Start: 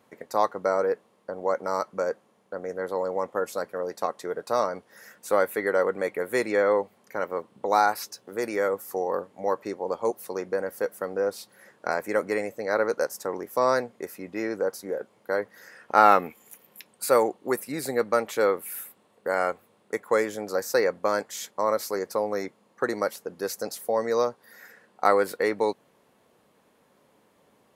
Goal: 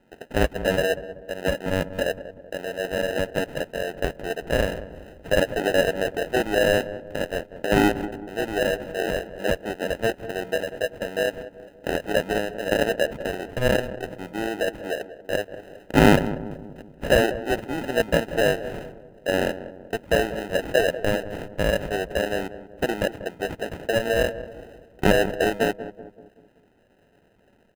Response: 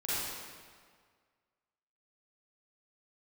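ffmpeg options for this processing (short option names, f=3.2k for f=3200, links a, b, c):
-filter_complex "[0:a]acrusher=samples=39:mix=1:aa=0.000001,highshelf=f=3.4k:t=q:w=1.5:g=-6,asplit=2[a][b];[b]adelay=190,lowpass=f=960:p=1,volume=-12dB,asplit=2[c][d];[d]adelay=190,lowpass=f=960:p=1,volume=0.51,asplit=2[e][f];[f]adelay=190,lowpass=f=960:p=1,volume=0.51,asplit=2[g][h];[h]adelay=190,lowpass=f=960:p=1,volume=0.51,asplit=2[i][j];[j]adelay=190,lowpass=f=960:p=1,volume=0.51[k];[a][c][e][g][i][k]amix=inputs=6:normalize=0,volume=2dB"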